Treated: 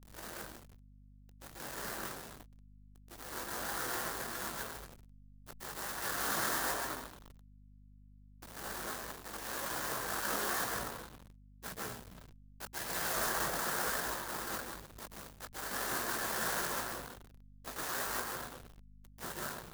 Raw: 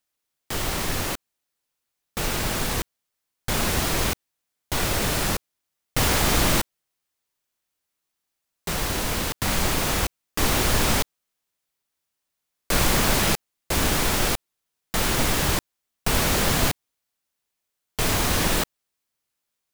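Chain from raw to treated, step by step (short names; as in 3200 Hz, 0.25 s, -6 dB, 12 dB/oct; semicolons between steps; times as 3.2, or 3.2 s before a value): slices in reverse order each 0.14 s, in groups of 6; frequency shift +61 Hz; resonant high shelf 1900 Hz -7 dB, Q 3; gate -48 dBFS, range -6 dB; spectral gate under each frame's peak -10 dB weak; reverse; upward compressor, threshold -35 dBFS; reverse; plate-style reverb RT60 2.4 s, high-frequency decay 0.5×, pre-delay 0.105 s, DRR -5 dB; chorus voices 4, 0.92 Hz, delay 20 ms, depth 4.4 ms; backlash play -24 dBFS; pre-emphasis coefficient 0.8; hum 50 Hz, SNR 18 dB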